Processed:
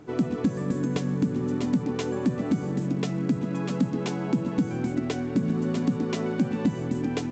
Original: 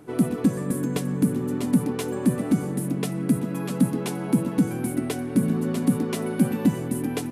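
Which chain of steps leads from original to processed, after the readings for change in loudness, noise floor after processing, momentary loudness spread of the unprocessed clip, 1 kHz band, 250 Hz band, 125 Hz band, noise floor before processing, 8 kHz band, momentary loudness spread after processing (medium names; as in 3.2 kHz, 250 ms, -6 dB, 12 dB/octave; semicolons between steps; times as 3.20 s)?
-2.5 dB, -32 dBFS, 5 LU, -1.0 dB, -2.5 dB, -2.0 dB, -31 dBFS, -9.0 dB, 2 LU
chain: compression 2.5:1, threshold -22 dBFS, peak gain reduction 6 dB; peaking EQ 62 Hz +3.5 dB 1.3 oct; µ-law 128 kbps 16 kHz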